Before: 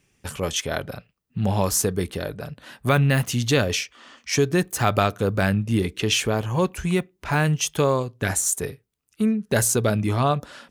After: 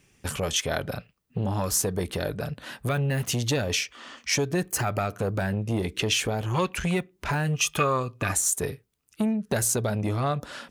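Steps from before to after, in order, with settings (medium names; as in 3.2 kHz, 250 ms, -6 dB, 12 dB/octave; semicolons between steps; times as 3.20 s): 4.68–5.34 s: band-stop 3.6 kHz, Q 5.7; 6.53–7.00 s: peaking EQ 2.4 kHz +14.5 dB -> +4 dB 2.4 oct; compression 3:1, threshold -26 dBFS, peak gain reduction 9.5 dB; 7.53–8.32 s: small resonant body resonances 1.2/2.5 kHz, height 17 dB; transformer saturation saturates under 630 Hz; trim +3.5 dB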